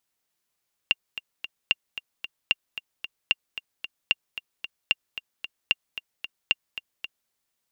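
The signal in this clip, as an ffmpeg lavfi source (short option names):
-f lavfi -i "aevalsrc='pow(10,(-6.5-13*gte(mod(t,3*60/225),60/225))/20)*sin(2*PI*2790*mod(t,60/225))*exp(-6.91*mod(t,60/225)/0.03)':d=6.4:s=44100"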